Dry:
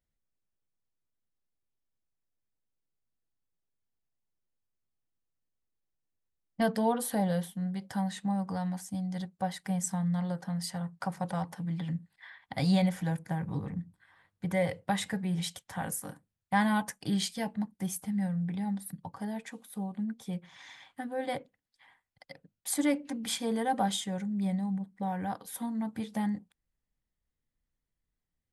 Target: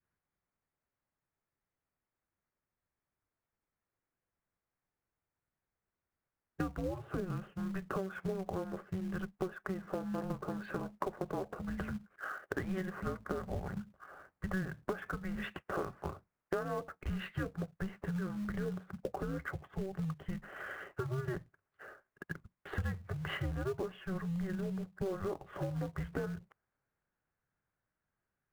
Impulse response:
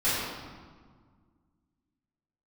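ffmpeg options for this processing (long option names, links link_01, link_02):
-filter_complex "[0:a]highpass=frequency=260:width_type=q:width=0.5412,highpass=frequency=260:width_type=q:width=1.307,lowpass=frequency=2500:width_type=q:width=0.5176,lowpass=frequency=2500:width_type=q:width=0.7071,lowpass=frequency=2500:width_type=q:width=1.932,afreqshift=-380,adynamicequalizer=threshold=0.00447:dfrequency=700:dqfactor=0.77:tfrequency=700:tqfactor=0.77:attack=5:release=100:ratio=0.375:range=3:mode=boostabove:tftype=bell,asplit=2[link_01][link_02];[link_02]acrusher=bits=2:mode=log:mix=0:aa=0.000001,volume=-7dB[link_03];[link_01][link_03]amix=inputs=2:normalize=0,acompressor=threshold=-39dB:ratio=12,volume=5.5dB"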